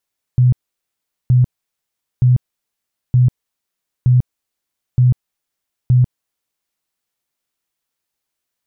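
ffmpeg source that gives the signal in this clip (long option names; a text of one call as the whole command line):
ffmpeg -f lavfi -i "aevalsrc='0.422*sin(2*PI*125*mod(t,0.92))*lt(mod(t,0.92),18/125)':duration=6.44:sample_rate=44100" out.wav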